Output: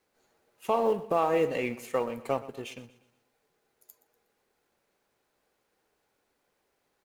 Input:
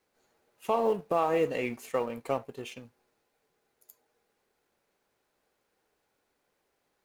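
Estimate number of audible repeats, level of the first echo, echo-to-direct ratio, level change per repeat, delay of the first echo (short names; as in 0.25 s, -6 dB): 3, -17.0 dB, -16.0 dB, -7.5 dB, 0.121 s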